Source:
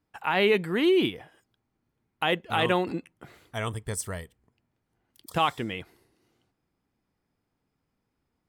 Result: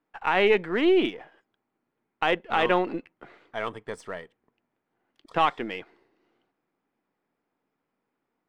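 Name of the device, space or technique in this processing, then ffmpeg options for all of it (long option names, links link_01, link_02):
crystal radio: -af "highpass=280,lowpass=2500,aeval=exprs='if(lt(val(0),0),0.708*val(0),val(0))':channel_layout=same,volume=4dB"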